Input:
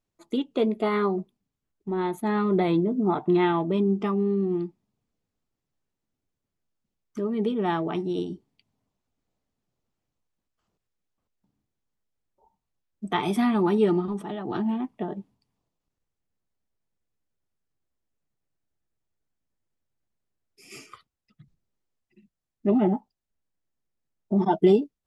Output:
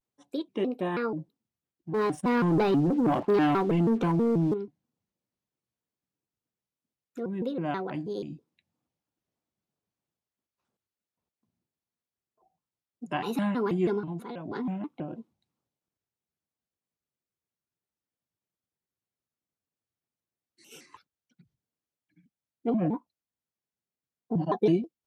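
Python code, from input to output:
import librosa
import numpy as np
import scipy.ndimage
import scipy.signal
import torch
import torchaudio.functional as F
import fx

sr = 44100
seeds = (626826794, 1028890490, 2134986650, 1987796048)

y = scipy.signal.sosfilt(scipy.signal.butter(2, 100.0, 'highpass', fs=sr, output='sos'), x)
y = fx.leveller(y, sr, passes=2, at=(1.93, 4.53))
y = fx.vibrato_shape(y, sr, shape='square', rate_hz=3.1, depth_cents=250.0)
y = y * librosa.db_to_amplitude(-5.5)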